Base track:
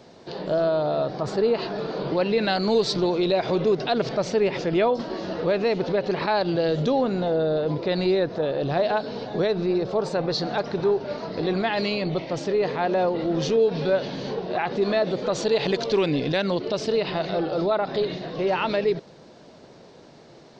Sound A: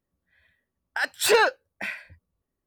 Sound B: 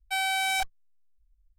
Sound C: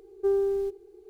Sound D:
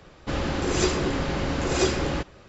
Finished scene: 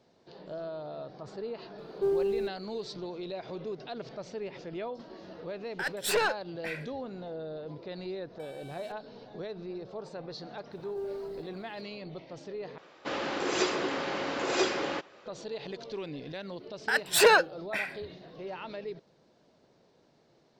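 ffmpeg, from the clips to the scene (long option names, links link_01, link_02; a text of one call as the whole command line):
ffmpeg -i bed.wav -i cue0.wav -i cue1.wav -i cue2.wav -i cue3.wav -filter_complex "[3:a]asplit=2[link_01][link_02];[1:a]asplit=2[link_03][link_04];[0:a]volume=-16.5dB[link_05];[link_03]aeval=exprs='(tanh(5.01*val(0)+0.25)-tanh(0.25))/5.01':channel_layout=same[link_06];[2:a]acompressor=threshold=-44dB:ratio=6:attack=3.2:release=140:knee=1:detection=peak[link_07];[link_02]acrusher=bits=9:mix=0:aa=0.000001[link_08];[4:a]highpass=370,lowpass=5300[link_09];[link_05]asplit=2[link_10][link_11];[link_10]atrim=end=12.784[link_12];[link_09]atrim=end=2.48,asetpts=PTS-STARTPTS,volume=-2dB[link_13];[link_11]atrim=start=15.256[link_14];[link_01]atrim=end=1.09,asetpts=PTS-STARTPTS,volume=-3dB,afade=type=in:duration=0.004:curve=hsin,afade=type=out:start_time=1.086:duration=0.004:curve=hsin,adelay=1780[link_15];[link_06]atrim=end=2.66,asetpts=PTS-STARTPTS,volume=-6dB,afade=type=in:duration=0.004:curve=hsin,afade=type=out:start_time=2.656:duration=0.004:curve=hsin,adelay=4830[link_16];[link_07]atrim=end=1.58,asetpts=PTS-STARTPTS,volume=-11.5dB,afade=type=in:duration=0.004:curve=hsin,afade=type=out:start_time=1.576:duration=0.004:curve=hsin,adelay=8290[link_17];[link_08]atrim=end=1.09,asetpts=PTS-STARTPTS,volume=-12dB,afade=type=in:duration=0.004:curve=hsin,afade=type=out:start_time=1.086:duration=0.004:curve=hsin,adelay=10720[link_18];[link_04]atrim=end=2.66,asetpts=PTS-STARTPTS,volume=-1dB,afade=type=in:duration=0.004:curve=hsin,afade=type=out:start_time=2.656:duration=0.004:curve=hsin,adelay=15920[link_19];[link_12][link_13]acrossfade=duration=0.004:curve1=hsin:curve2=hsin[link_20];[link_20][link_14]acrossfade=duration=0.004:curve1=hsin:curve2=hsin[link_21];[link_21][link_15][link_16][link_17][link_18][link_19]amix=inputs=6:normalize=0" out.wav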